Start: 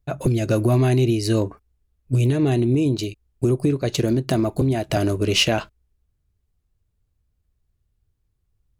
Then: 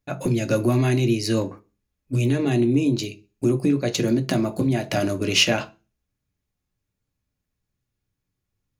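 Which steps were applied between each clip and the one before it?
reverb RT60 0.30 s, pre-delay 3 ms, DRR 6.5 dB; gain -1 dB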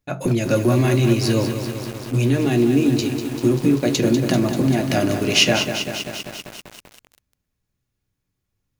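lo-fi delay 0.195 s, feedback 80%, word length 6-bit, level -8 dB; gain +2.5 dB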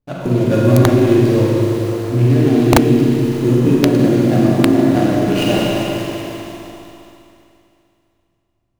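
median filter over 25 samples; Schroeder reverb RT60 2.7 s, combs from 33 ms, DRR -4.5 dB; wrapped overs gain 2 dB; gain +1 dB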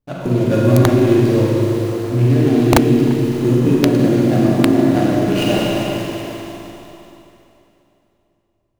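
tape echo 0.343 s, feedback 57%, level -17 dB, low-pass 1700 Hz; gain -1 dB

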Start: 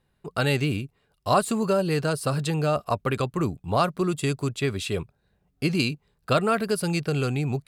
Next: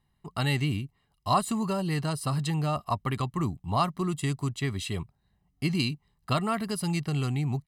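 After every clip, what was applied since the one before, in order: comb 1 ms, depth 68%; gain -5 dB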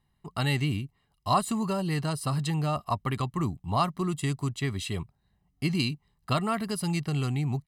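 nothing audible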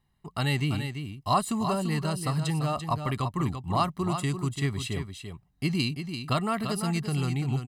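echo 0.34 s -8 dB

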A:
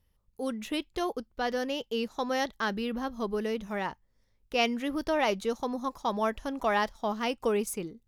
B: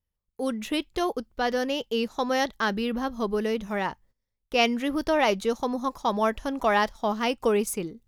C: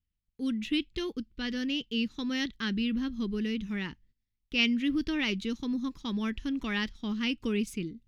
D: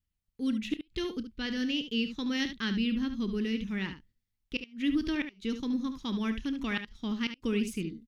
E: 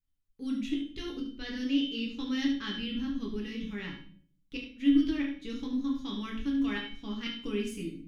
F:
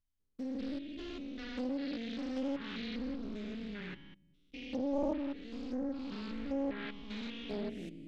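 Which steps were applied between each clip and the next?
gate -59 dBFS, range -18 dB; gain +4.5 dB
EQ curve 300 Hz 0 dB, 670 Hz -27 dB, 2000 Hz -4 dB, 2800 Hz 0 dB, 4200 Hz -3 dB, 11000 Hz -17 dB
flipped gate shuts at -19 dBFS, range -31 dB; on a send: early reflections 31 ms -17 dB, 72 ms -10 dB
resonator 280 Hz, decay 0.41 s, harmonics all, mix 80%; shoebox room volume 46 m³, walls mixed, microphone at 0.7 m; gain +5 dB
stepped spectrum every 0.2 s; treble ducked by the level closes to 1500 Hz, closed at -28 dBFS; Doppler distortion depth 0.89 ms; gain -3.5 dB

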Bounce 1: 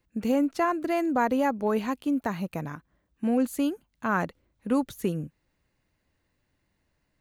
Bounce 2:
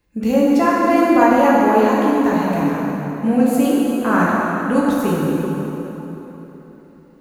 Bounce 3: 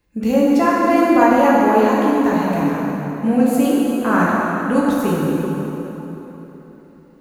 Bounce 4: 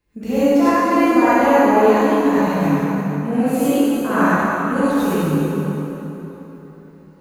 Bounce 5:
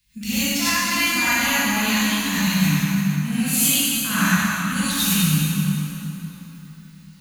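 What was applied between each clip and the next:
plate-style reverb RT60 3.8 s, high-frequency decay 0.65×, DRR -6.5 dB; gain +4.5 dB
nothing audible
non-linear reverb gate 0.13 s rising, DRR -7 dB; gain -7 dB
EQ curve 200 Hz 0 dB, 390 Hz -30 dB, 3400 Hz +13 dB; gain +2 dB

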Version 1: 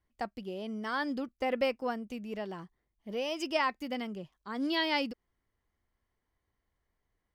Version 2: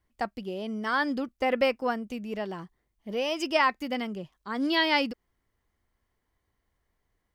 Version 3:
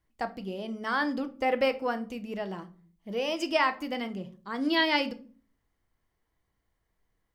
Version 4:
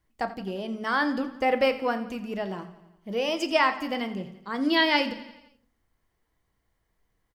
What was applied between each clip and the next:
dynamic EQ 1500 Hz, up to +3 dB, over -41 dBFS, Q 0.89; gain +4.5 dB
shoebox room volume 310 m³, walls furnished, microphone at 0.64 m; gain -2 dB
feedback echo 86 ms, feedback 59%, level -16 dB; gain +3 dB

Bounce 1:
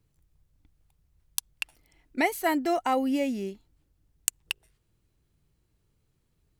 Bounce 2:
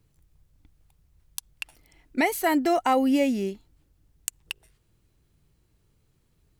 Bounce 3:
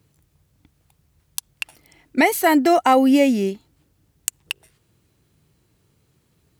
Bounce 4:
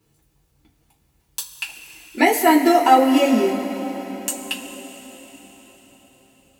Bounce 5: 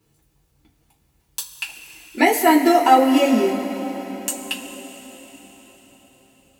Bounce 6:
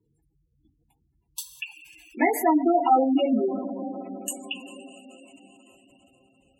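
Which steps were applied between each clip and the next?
limiter -18 dBFS, peak gain reduction 10 dB; gain +5 dB
HPF 94 Hz 12 dB/oct; gain +7 dB
reverb, pre-delay 3 ms, DRR -6.5 dB; gain -6 dB
nothing audible
spectral gate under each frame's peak -15 dB strong; gain -5.5 dB

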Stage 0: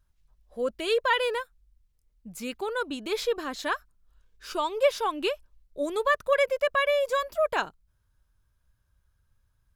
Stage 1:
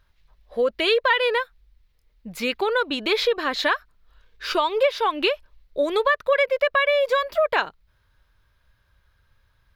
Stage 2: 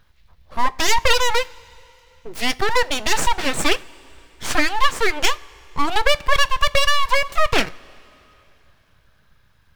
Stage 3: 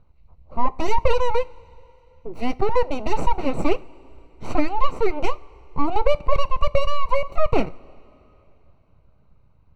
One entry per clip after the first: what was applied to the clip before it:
graphic EQ 500/1000/2000/4000/8000 Hz +6/+4/+9/+9/-8 dB; compressor 3:1, threshold -25 dBFS, peak gain reduction 12 dB; gain +5.5 dB
full-wave rectifier; two-slope reverb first 0.22 s, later 3.1 s, from -19 dB, DRR 15 dB; gain +6.5 dB
running mean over 26 samples; gain +2.5 dB

